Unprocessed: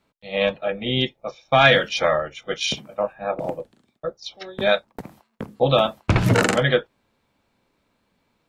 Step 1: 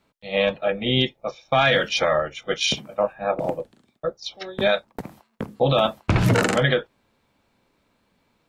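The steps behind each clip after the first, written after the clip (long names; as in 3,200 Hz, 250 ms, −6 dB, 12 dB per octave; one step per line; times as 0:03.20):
brickwall limiter −11 dBFS, peak gain reduction 8.5 dB
level +2 dB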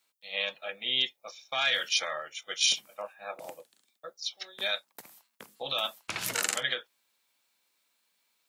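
first difference
level +3.5 dB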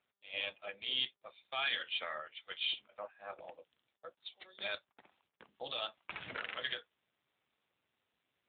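log-companded quantiser 6 bits
level −5.5 dB
AMR narrowband 7.4 kbit/s 8,000 Hz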